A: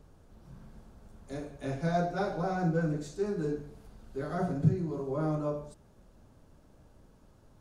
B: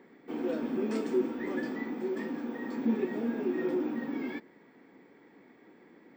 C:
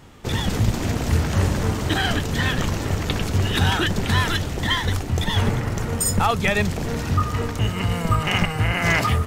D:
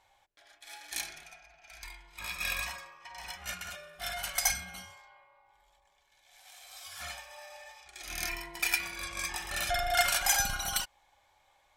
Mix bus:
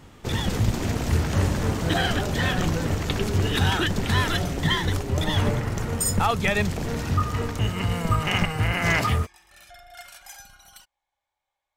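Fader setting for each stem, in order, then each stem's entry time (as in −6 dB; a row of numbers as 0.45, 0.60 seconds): −0.5, −11.5, −2.5, −17.0 decibels; 0.00, 0.00, 0.00, 0.00 seconds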